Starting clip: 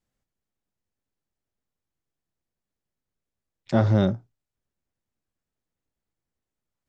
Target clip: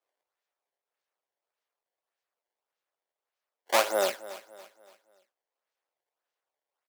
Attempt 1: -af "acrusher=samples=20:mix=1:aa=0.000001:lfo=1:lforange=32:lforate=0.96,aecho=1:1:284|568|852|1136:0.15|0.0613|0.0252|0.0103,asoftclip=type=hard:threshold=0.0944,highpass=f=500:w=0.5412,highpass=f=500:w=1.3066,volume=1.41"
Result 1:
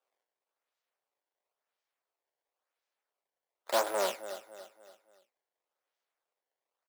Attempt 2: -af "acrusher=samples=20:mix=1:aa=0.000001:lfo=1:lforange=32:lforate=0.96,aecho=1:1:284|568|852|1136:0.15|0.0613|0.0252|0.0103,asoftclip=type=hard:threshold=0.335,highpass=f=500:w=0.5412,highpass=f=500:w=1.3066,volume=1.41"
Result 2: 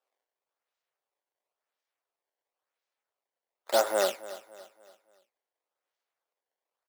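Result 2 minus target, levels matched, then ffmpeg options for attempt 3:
decimation with a swept rate: distortion -7 dB
-af "acrusher=samples=20:mix=1:aa=0.000001:lfo=1:lforange=32:lforate=1.7,aecho=1:1:284|568|852|1136:0.15|0.0613|0.0252|0.0103,asoftclip=type=hard:threshold=0.335,highpass=f=500:w=0.5412,highpass=f=500:w=1.3066,volume=1.41"

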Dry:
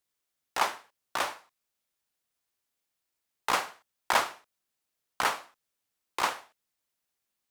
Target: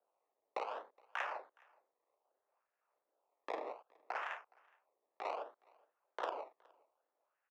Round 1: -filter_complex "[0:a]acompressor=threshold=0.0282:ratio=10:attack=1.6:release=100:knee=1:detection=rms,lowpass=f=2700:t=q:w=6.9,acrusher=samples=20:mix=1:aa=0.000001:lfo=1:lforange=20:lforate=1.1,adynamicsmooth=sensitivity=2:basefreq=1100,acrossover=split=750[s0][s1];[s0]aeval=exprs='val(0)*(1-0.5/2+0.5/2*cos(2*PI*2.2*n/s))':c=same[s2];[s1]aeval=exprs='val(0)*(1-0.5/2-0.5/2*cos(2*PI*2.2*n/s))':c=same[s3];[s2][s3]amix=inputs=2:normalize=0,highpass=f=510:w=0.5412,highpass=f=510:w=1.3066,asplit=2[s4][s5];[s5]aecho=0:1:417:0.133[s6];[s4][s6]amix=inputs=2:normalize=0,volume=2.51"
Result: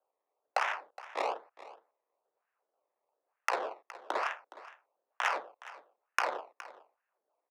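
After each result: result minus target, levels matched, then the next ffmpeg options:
echo-to-direct +10.5 dB; compression: peak gain reduction -6.5 dB; decimation with a swept rate: distortion -5 dB
-filter_complex "[0:a]acompressor=threshold=0.0282:ratio=10:attack=1.6:release=100:knee=1:detection=rms,lowpass=f=2700:t=q:w=6.9,acrusher=samples=20:mix=1:aa=0.000001:lfo=1:lforange=20:lforate=1.1,adynamicsmooth=sensitivity=2:basefreq=1100,acrossover=split=750[s0][s1];[s0]aeval=exprs='val(0)*(1-0.5/2+0.5/2*cos(2*PI*2.2*n/s))':c=same[s2];[s1]aeval=exprs='val(0)*(1-0.5/2-0.5/2*cos(2*PI*2.2*n/s))':c=same[s3];[s2][s3]amix=inputs=2:normalize=0,highpass=f=510:w=0.5412,highpass=f=510:w=1.3066,asplit=2[s4][s5];[s5]aecho=0:1:417:0.0398[s6];[s4][s6]amix=inputs=2:normalize=0,volume=2.51"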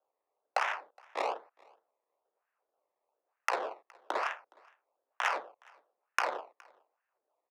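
compression: peak gain reduction -6.5 dB; decimation with a swept rate: distortion -5 dB
-filter_complex "[0:a]acompressor=threshold=0.0119:ratio=10:attack=1.6:release=100:knee=1:detection=rms,lowpass=f=2700:t=q:w=6.9,acrusher=samples=20:mix=1:aa=0.000001:lfo=1:lforange=20:lforate=1.1,adynamicsmooth=sensitivity=2:basefreq=1100,acrossover=split=750[s0][s1];[s0]aeval=exprs='val(0)*(1-0.5/2+0.5/2*cos(2*PI*2.2*n/s))':c=same[s2];[s1]aeval=exprs='val(0)*(1-0.5/2-0.5/2*cos(2*PI*2.2*n/s))':c=same[s3];[s2][s3]amix=inputs=2:normalize=0,highpass=f=510:w=0.5412,highpass=f=510:w=1.3066,asplit=2[s4][s5];[s5]aecho=0:1:417:0.0398[s6];[s4][s6]amix=inputs=2:normalize=0,volume=2.51"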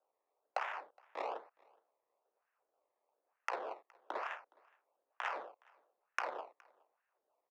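decimation with a swept rate: distortion -4 dB
-filter_complex "[0:a]acompressor=threshold=0.0119:ratio=10:attack=1.6:release=100:knee=1:detection=rms,lowpass=f=2700:t=q:w=6.9,acrusher=samples=20:mix=1:aa=0.000001:lfo=1:lforange=20:lforate=0.64,adynamicsmooth=sensitivity=2:basefreq=1100,acrossover=split=750[s0][s1];[s0]aeval=exprs='val(0)*(1-0.5/2+0.5/2*cos(2*PI*2.2*n/s))':c=same[s2];[s1]aeval=exprs='val(0)*(1-0.5/2-0.5/2*cos(2*PI*2.2*n/s))':c=same[s3];[s2][s3]amix=inputs=2:normalize=0,highpass=f=510:w=0.5412,highpass=f=510:w=1.3066,asplit=2[s4][s5];[s5]aecho=0:1:417:0.0398[s6];[s4][s6]amix=inputs=2:normalize=0,volume=2.51"

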